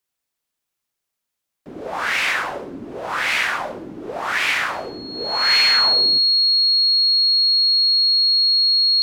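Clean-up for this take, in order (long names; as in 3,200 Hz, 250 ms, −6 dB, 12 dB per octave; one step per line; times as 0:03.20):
notch filter 4,300 Hz, Q 30
echo removal 128 ms −18 dB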